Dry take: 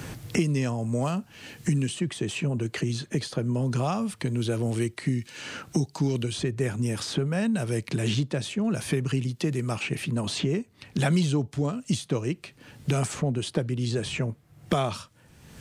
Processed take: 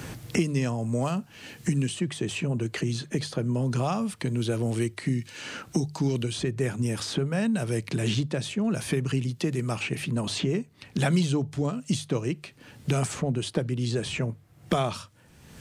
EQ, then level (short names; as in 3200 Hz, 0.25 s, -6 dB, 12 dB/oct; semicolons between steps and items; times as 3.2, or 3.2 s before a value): notches 50/100/150 Hz; 0.0 dB